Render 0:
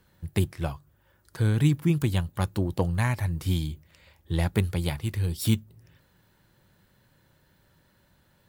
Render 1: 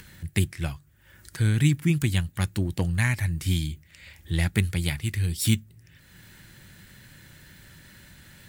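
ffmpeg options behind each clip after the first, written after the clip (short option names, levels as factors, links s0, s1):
-af "equalizer=f=500:t=o:w=1:g=-7,equalizer=f=1000:t=o:w=1:g=-8,equalizer=f=2000:t=o:w=1:g=7,equalizer=f=8000:t=o:w=1:g=6,acompressor=mode=upward:threshold=0.0112:ratio=2.5,volume=1.19"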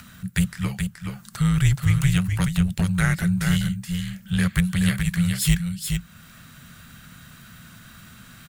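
-filter_complex "[0:a]afreqshift=-270,asplit=2[s0][s1];[s1]volume=11.2,asoftclip=hard,volume=0.0891,volume=0.447[s2];[s0][s2]amix=inputs=2:normalize=0,aecho=1:1:425:0.531"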